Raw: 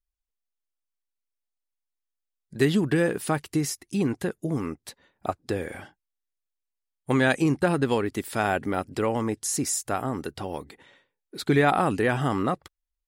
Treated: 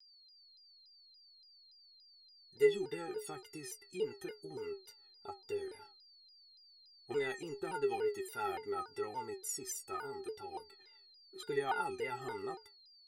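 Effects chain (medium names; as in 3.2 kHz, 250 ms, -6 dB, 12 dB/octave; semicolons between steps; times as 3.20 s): inharmonic resonator 400 Hz, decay 0.24 s, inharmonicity 0.03; whistle 4.5 kHz -61 dBFS; vibrato with a chosen wave saw down 3.5 Hz, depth 160 cents; trim +1 dB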